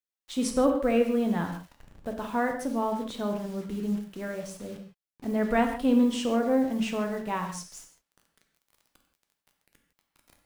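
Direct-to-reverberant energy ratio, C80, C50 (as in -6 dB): 3.5 dB, 9.0 dB, 6.5 dB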